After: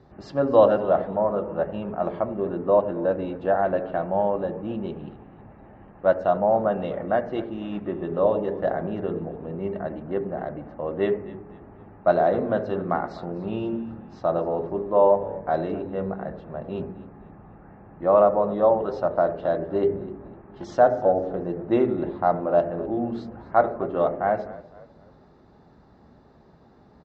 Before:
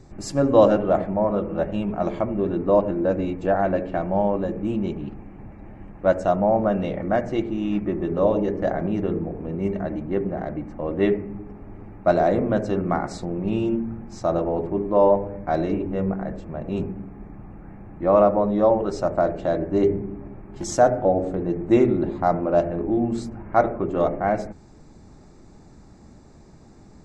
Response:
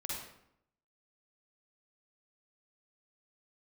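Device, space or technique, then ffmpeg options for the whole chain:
frequency-shifting delay pedal into a guitar cabinet: -filter_complex "[0:a]asplit=4[a][b][c][d];[b]adelay=252,afreqshift=-34,volume=-18dB[e];[c]adelay=504,afreqshift=-68,volume=-26.2dB[f];[d]adelay=756,afreqshift=-102,volume=-34.4dB[g];[a][e][f][g]amix=inputs=4:normalize=0,highpass=78,equalizer=f=86:t=q:w=4:g=-9,equalizer=f=130:t=q:w=4:g=-7,equalizer=f=200:t=q:w=4:g=-6,equalizer=f=310:t=q:w=4:g=-8,equalizer=f=2.3k:t=q:w=4:g=-10,lowpass=f=3.7k:w=0.5412,lowpass=f=3.7k:w=1.3066,asettb=1/sr,asplit=3[h][i][j];[h]atrim=end=1.184[k];[i]atrim=start=1.18:end=2.72,asetpts=PTS-STARTPTS,afade=t=in:d=0.004:c=qsin,afade=t=out:st=1.536:d=0.004:c=qsin,equalizer=f=3.5k:t=o:w=0.6:g=-5.5[l];[j]atrim=start=2.716[m];[k][l]acrossfade=d=0.004:c1=hsin:c2=qsin[n];[n][m]acrossfade=d=0.004:c1=qsin:c2=hsin"

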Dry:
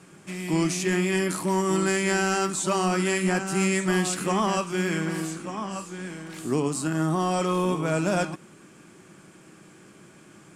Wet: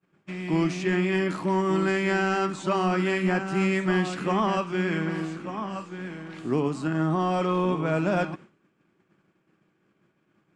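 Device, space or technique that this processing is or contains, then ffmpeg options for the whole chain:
hearing-loss simulation: -af "lowpass=3.2k,agate=range=-33dB:threshold=-39dB:ratio=3:detection=peak"

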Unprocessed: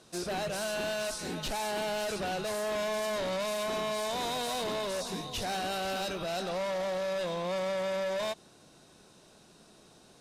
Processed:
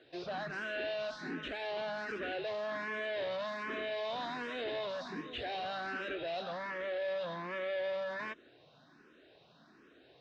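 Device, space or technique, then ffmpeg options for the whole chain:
barber-pole phaser into a guitar amplifier: -filter_complex "[0:a]asplit=2[a][b];[b]afreqshift=1.3[c];[a][c]amix=inputs=2:normalize=1,asoftclip=type=tanh:threshold=-31dB,highpass=82,equalizer=f=93:t=q:w=4:g=-9,equalizer=f=190:t=q:w=4:g=-8,equalizer=f=280:t=q:w=4:g=4,equalizer=f=870:t=q:w=4:g=-4,equalizer=f=1.7k:t=q:w=4:g=7,lowpass=f=3.8k:w=0.5412,lowpass=f=3.8k:w=1.3066"

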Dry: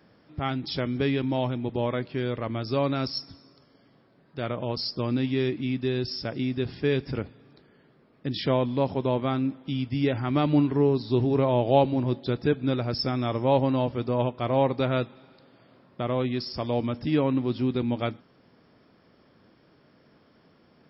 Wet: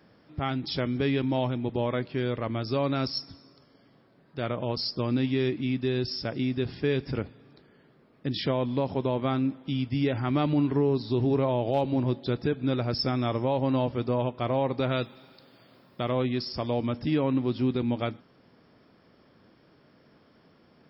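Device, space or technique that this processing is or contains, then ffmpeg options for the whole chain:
clipper into limiter: -filter_complex "[0:a]asettb=1/sr,asplit=3[a][b][c];[a]atrim=end=14.894[d];[b]atrim=start=14.89:end=16.12,asetpts=PTS-STARTPTS,afade=t=in:d=0.004:c=qsin,afade=t=out:st=1.226:d=0.004:c=qsin,aemphasis=mode=production:type=75fm[e];[c]atrim=start=16.116[f];[d][e]acrossfade=d=0.004:c1=hsin:c2=qsin[g];[g][f]acrossfade=d=0.004:c1=qsin:c2=hsin,asoftclip=type=hard:threshold=-10dB,alimiter=limit=-16.5dB:level=0:latency=1:release=105"

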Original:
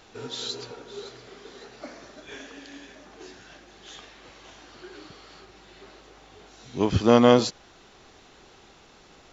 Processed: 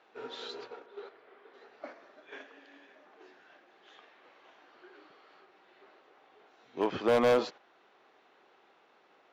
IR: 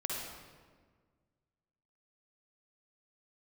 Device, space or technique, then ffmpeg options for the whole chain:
walkie-talkie: -filter_complex "[0:a]asettb=1/sr,asplit=3[a][b][c];[a]atrim=end=0.864[d];[b]atrim=start=0.86:end=1.54,asetpts=PTS-STARTPTS,afade=t=in:d=0.004:c=qsin,afade=t=out:st=0.676:d=0.004:c=qsin,bass=f=250:g=-7,treble=f=4k:g=-14[e];[c]atrim=start=1.536[f];[d][e]acrossfade=d=0.004:c1=hsin:c2=qsin[g];[g][f]acrossfade=d=0.004:c1=qsin:c2=hsin,highpass=420,lowpass=2.3k,asoftclip=type=hard:threshold=-18dB,agate=range=-6dB:threshold=-44dB:ratio=16:detection=peak,volume=-1.5dB"

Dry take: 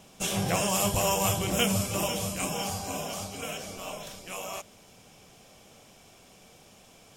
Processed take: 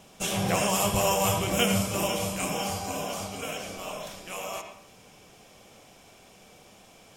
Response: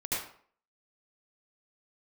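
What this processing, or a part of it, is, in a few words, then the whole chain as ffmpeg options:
filtered reverb send: -filter_complex "[0:a]asplit=2[a][b];[b]highpass=250,lowpass=3.9k[c];[1:a]atrim=start_sample=2205[d];[c][d]afir=irnorm=-1:irlink=0,volume=-9.5dB[e];[a][e]amix=inputs=2:normalize=0"

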